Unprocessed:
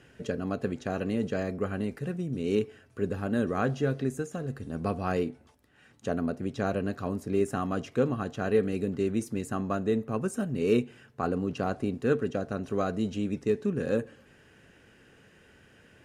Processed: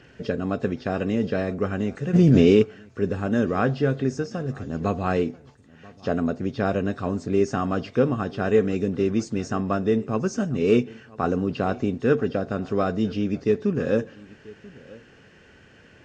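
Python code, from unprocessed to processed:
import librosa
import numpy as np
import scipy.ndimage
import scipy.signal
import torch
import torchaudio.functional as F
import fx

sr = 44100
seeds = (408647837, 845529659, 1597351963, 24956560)

y = fx.freq_compress(x, sr, knee_hz=3200.0, ratio=1.5)
y = y + 10.0 ** (-22.0 / 20.0) * np.pad(y, (int(987 * sr / 1000.0), 0))[:len(y)]
y = fx.env_flatten(y, sr, amount_pct=100, at=(2.13, 2.61), fade=0.02)
y = y * librosa.db_to_amplitude(5.5)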